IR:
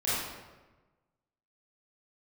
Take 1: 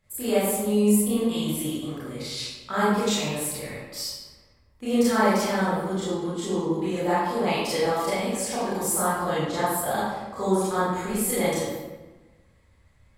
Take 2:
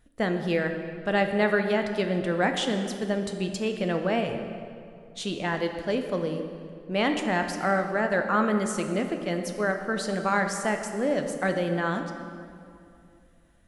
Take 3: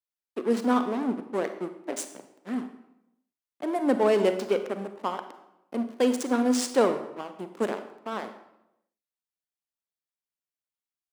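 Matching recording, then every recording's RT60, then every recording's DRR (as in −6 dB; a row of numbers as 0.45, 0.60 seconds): 1; 1.2, 2.5, 0.85 seconds; −11.5, 5.5, 8.5 decibels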